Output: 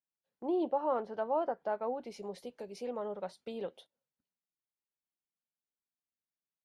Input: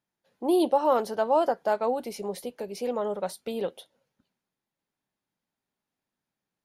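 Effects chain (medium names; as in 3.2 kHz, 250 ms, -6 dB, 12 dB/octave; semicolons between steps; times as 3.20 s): gate -48 dBFS, range -11 dB; low-pass that closes with the level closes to 2 kHz, closed at -23 dBFS; trim -9 dB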